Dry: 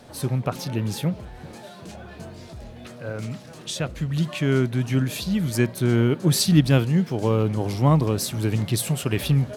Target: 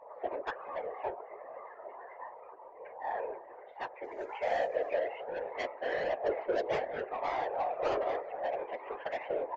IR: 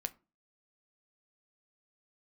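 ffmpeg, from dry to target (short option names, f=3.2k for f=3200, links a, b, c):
-filter_complex "[0:a]highpass=f=210:t=q:w=0.5412,highpass=f=210:t=q:w=1.307,lowpass=f=2k:t=q:w=0.5176,lowpass=f=2k:t=q:w=0.7071,lowpass=f=2k:t=q:w=1.932,afreqshift=290,asettb=1/sr,asplit=3[a][b][c];[a]atrim=end=4.044[d];[b]atrim=start=4.04:end=4.76,asetpts=PTS-STARTPTS,afade=t=in:d=0.004:c=qsin,afade=t=out:st=0.716:d=0.004:c=qsin,acrusher=bits=4:mode=log:mix=0:aa=0.000001[e];[c]atrim=start=4.756[f];[d][e]acrossfade=d=0.004:c1=hsin:c2=qsin[g];[g][f]acrossfade=d=0.004:c1=qsin:c2=hsin,asplit=2[h][i];[i]aecho=0:1:111:0.0668[j];[h][j]amix=inputs=2:normalize=0,afftdn=nr=16:nf=-47,equalizer=f=1.4k:w=5.5:g=-9,asplit=2[k][l];[l]adelay=264,lowpass=f=1.6k:p=1,volume=-16.5dB,asplit=2[m][n];[n]adelay=264,lowpass=f=1.6k:p=1,volume=0.24[o];[m][o]amix=inputs=2:normalize=0[p];[k][p]amix=inputs=2:normalize=0,asoftclip=type=tanh:threshold=-24.5dB,aphaser=in_gain=1:out_gain=1:delay=1.8:decay=0.36:speed=0.31:type=triangular,afftfilt=real='hypot(re,im)*cos(2*PI*random(0))':imag='hypot(re,im)*sin(2*PI*random(1))':win_size=512:overlap=0.75,flanger=delay=1.1:depth=2.1:regen=-53:speed=1.3:shape=sinusoidal,volume=6dB" -ar 16000 -c:a libvorbis -b:a 96k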